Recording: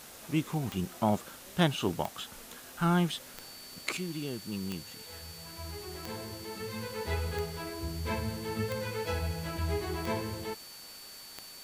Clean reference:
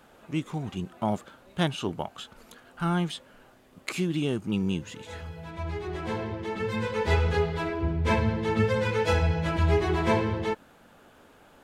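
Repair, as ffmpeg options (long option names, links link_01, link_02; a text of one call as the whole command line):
ffmpeg -i in.wav -af "adeclick=threshold=4,bandreject=frequency=4500:width=30,afwtdn=0.0035,asetnsamples=nb_out_samples=441:pad=0,asendcmd='3.97 volume volume 9.5dB',volume=0dB" out.wav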